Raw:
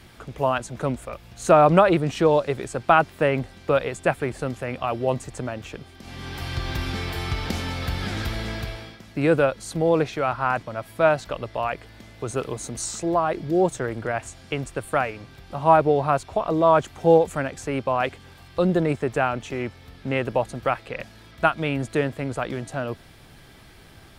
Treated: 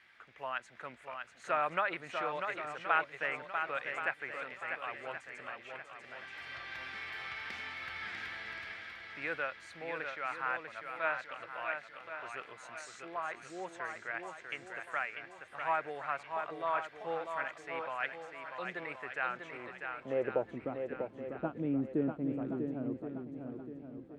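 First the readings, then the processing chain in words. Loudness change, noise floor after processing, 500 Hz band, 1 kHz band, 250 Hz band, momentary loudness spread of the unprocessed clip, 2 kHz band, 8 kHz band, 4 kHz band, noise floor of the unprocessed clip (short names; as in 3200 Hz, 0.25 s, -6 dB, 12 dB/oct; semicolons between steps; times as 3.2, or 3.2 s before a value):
-14.5 dB, -56 dBFS, -18.0 dB, -13.5 dB, -14.5 dB, 15 LU, -6.5 dB, -22.5 dB, -13.5 dB, -48 dBFS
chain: low shelf 160 Hz +4.5 dB; band-pass sweep 1900 Hz -> 280 Hz, 19.23–20.66; swung echo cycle 1.074 s, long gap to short 1.5:1, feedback 33%, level -6 dB; gain -4.5 dB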